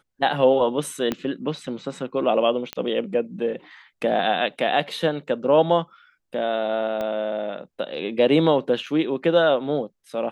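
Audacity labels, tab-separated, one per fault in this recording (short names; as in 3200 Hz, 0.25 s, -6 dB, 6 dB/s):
1.120000	1.120000	pop -11 dBFS
2.730000	2.730000	pop -13 dBFS
7.010000	7.010000	pop -16 dBFS
8.860000	8.870000	gap 5 ms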